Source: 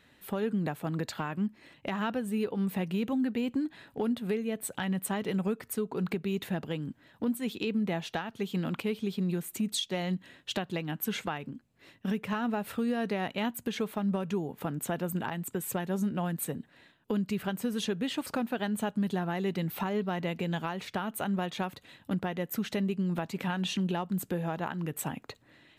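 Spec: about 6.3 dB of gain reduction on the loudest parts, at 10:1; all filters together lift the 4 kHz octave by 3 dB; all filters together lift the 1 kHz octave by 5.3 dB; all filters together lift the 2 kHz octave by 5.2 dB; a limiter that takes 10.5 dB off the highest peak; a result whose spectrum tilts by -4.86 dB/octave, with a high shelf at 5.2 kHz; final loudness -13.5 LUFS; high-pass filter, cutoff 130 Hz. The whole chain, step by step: high-pass 130 Hz; peaking EQ 1 kHz +6 dB; peaking EQ 2 kHz +4.5 dB; peaking EQ 4 kHz +3.5 dB; treble shelf 5.2 kHz -5 dB; compression 10:1, threshold -31 dBFS; trim +24.5 dB; peak limiter -1.5 dBFS

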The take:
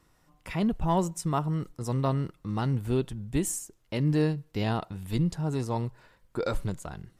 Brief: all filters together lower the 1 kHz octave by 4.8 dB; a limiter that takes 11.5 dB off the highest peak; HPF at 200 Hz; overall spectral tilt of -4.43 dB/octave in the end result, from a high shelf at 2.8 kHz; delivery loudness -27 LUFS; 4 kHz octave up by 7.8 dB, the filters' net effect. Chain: high-pass 200 Hz; peaking EQ 1 kHz -7.5 dB; treble shelf 2.8 kHz +8.5 dB; peaking EQ 4 kHz +3.5 dB; trim +7.5 dB; peak limiter -15 dBFS

